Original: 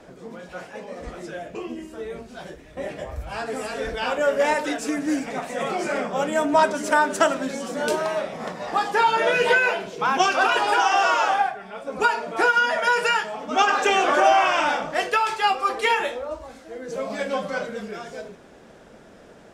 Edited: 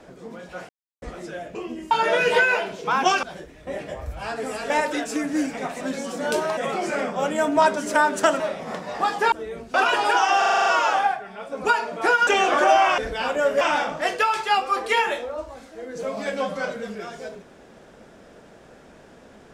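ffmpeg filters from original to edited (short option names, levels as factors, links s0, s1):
-filter_complex "[0:a]asplit=21[s0][s1][s2][s3][s4][s5][s6][s7][s8][s9][s10][s11][s12][s13][s14][s15][s16][s17][s18][s19][s20];[s0]atrim=end=0.69,asetpts=PTS-STARTPTS,afade=t=out:st=0.686:d=0.004:c=hsin[s21];[s1]atrim=start=0.69:end=1.02,asetpts=PTS-STARTPTS,volume=0[s22];[s2]atrim=start=1.02:end=1.912,asetpts=PTS-STARTPTS,afade=t=in:d=0.004:c=hsin[s23];[s3]atrim=start=9.048:end=10.372[s24];[s4]atrim=start=2.328:end=3.802[s25];[s5]atrim=start=4.428:end=5.542[s26];[s6]atrim=start=7.368:end=8.132[s27];[s7]atrim=start=5.538:end=7.372[s28];[s8]atrim=start=8.128:end=9.052[s29];[s9]atrim=start=1.908:end=2.332[s30];[s10]atrim=start=10.368:end=11.052[s31];[s11]atrim=start=11.008:end=11.052[s32];[s12]atrim=start=11.008:end=11.052[s33];[s13]atrim=start=11.008:end=11.052[s34];[s14]atrim=start=11.008:end=11.052[s35];[s15]atrim=start=11.008:end=11.052[s36];[s16]atrim=start=11.008:end=11.052[s37];[s17]atrim=start=11.008:end=12.622[s38];[s18]atrim=start=13.828:end=14.542[s39];[s19]atrim=start=3.798:end=4.432[s40];[s20]atrim=start=14.538[s41];[s21][s22][s23]concat=n=3:v=0:a=1[s42];[s42][s24]acrossfade=d=0.004:c1=hsin:c2=hsin[s43];[s43][s25]acrossfade=d=0.004:c1=hsin:c2=hsin[s44];[s44][s26]acrossfade=d=0.004:c1=hsin:c2=hsin[s45];[s45][s27]acrossfade=d=0.004:c1=hsin:c2=hsin[s46];[s46][s28]acrossfade=d=0.004:c1=hsin:c2=hsin[s47];[s47][s29]acrossfade=d=0.004:c1=hsin:c2=hsin[s48];[s48][s30]acrossfade=d=0.004:c1=hsin:c2=hsin[s49];[s49][s31]acrossfade=d=0.004:c1=hsin:c2=hsin[s50];[s50][s32]acrossfade=d=0.004:c1=hsin:c2=hsin[s51];[s51][s33]acrossfade=d=0.004:c1=hsin:c2=hsin[s52];[s52][s34]acrossfade=d=0.004:c1=hsin:c2=hsin[s53];[s53][s35]acrossfade=d=0.004:c1=hsin:c2=hsin[s54];[s54][s36]acrossfade=d=0.004:c1=hsin:c2=hsin[s55];[s55][s37]acrossfade=d=0.004:c1=hsin:c2=hsin[s56];[s56][s38]acrossfade=d=0.004:c1=hsin:c2=hsin[s57];[s57][s39]acrossfade=d=0.004:c1=hsin:c2=hsin[s58];[s58][s40]acrossfade=d=0.004:c1=hsin:c2=hsin[s59];[s59][s41]acrossfade=d=0.004:c1=hsin:c2=hsin"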